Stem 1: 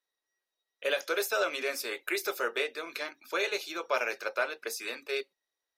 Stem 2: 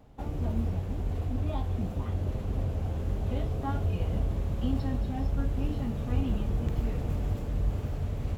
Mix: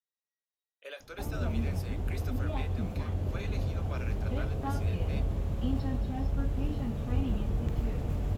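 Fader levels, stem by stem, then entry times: −14.5, −1.5 decibels; 0.00, 1.00 seconds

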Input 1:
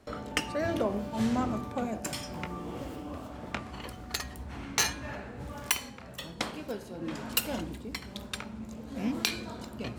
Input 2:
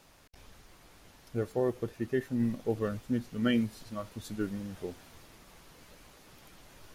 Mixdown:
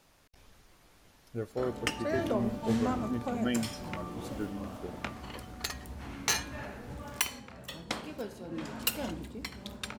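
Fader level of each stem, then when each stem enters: −2.0, −4.0 decibels; 1.50, 0.00 seconds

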